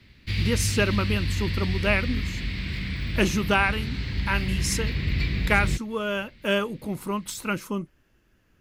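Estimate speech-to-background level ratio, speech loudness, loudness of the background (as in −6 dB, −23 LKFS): 2.0 dB, −27.0 LKFS, −29.0 LKFS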